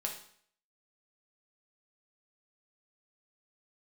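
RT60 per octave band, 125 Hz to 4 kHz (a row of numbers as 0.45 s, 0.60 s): 0.60 s, 0.60 s, 0.60 s, 0.60 s, 0.60 s, 0.55 s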